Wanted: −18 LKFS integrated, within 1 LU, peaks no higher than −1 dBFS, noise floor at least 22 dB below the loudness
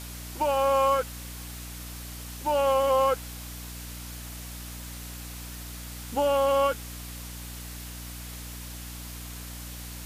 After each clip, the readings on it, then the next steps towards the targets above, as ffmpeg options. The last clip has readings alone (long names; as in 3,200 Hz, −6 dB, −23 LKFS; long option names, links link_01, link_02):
mains hum 60 Hz; hum harmonics up to 300 Hz; level of the hum −39 dBFS; background noise floor −40 dBFS; target noise floor −52 dBFS; integrated loudness −30.0 LKFS; sample peak −13.0 dBFS; target loudness −18.0 LKFS
→ -af "bandreject=frequency=60:width_type=h:width=6,bandreject=frequency=120:width_type=h:width=6,bandreject=frequency=180:width_type=h:width=6,bandreject=frequency=240:width_type=h:width=6,bandreject=frequency=300:width_type=h:width=6"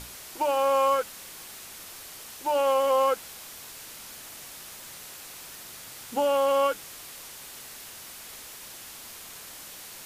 mains hum none found; background noise floor −44 dBFS; target noise floor −48 dBFS
→ -af "afftdn=noise_reduction=6:noise_floor=-44"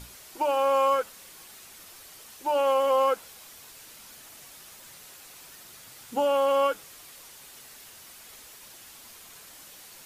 background noise floor −49 dBFS; integrated loudness −25.5 LKFS; sample peak −13.5 dBFS; target loudness −18.0 LKFS
→ -af "volume=7.5dB"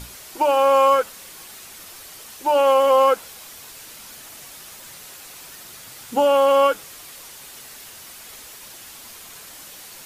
integrated loudness −18.0 LKFS; sample peak −6.0 dBFS; background noise floor −41 dBFS